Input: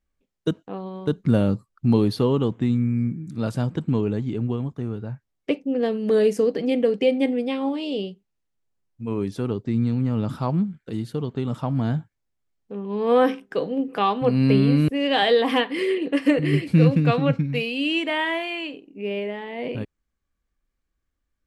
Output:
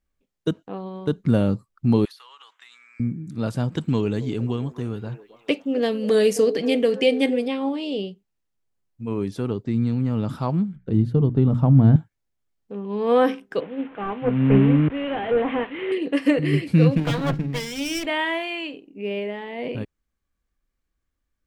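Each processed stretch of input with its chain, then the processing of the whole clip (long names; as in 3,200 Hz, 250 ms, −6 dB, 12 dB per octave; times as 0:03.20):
0:02.05–0:03.00: high-pass filter 1,200 Hz 24 dB per octave + downward compressor 10 to 1, threshold −43 dBFS
0:03.72–0:07.48: high-shelf EQ 2,200 Hz +10.5 dB + echo through a band-pass that steps 269 ms, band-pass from 460 Hz, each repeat 0.7 octaves, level −11 dB
0:10.76–0:11.96: spectral tilt −4 dB per octave + mains-hum notches 60/120/180/240/300 Hz
0:13.60–0:15.92: linear delta modulator 16 kbit/s, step −31 dBFS + multiband upward and downward expander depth 100%
0:16.97–0:18.06: lower of the sound and its delayed copy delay 0.57 ms + high-shelf EQ 7,500 Hz +4.5 dB + mains-hum notches 50/100/150/200/250/300/350/400 Hz
whole clip: no processing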